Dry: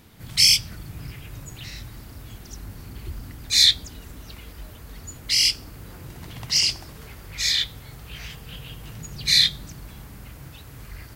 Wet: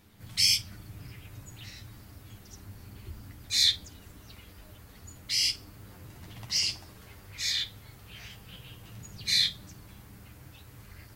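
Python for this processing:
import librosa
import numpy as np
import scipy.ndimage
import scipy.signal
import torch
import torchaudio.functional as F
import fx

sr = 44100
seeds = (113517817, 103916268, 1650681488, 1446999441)

y = fx.room_early_taps(x, sr, ms=(10, 52), db=(-5.0, -16.5))
y = F.gain(torch.from_numpy(y), -9.0).numpy()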